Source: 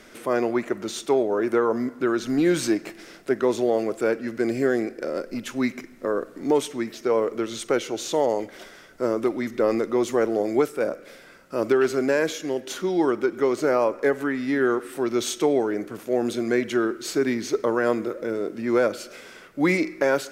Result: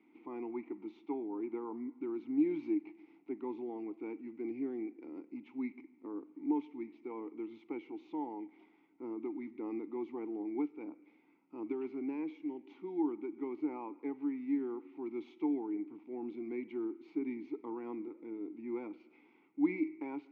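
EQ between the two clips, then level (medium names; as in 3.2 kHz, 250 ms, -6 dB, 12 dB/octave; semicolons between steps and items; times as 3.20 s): vowel filter u; high-pass 92 Hz; distance through air 280 m; -4.5 dB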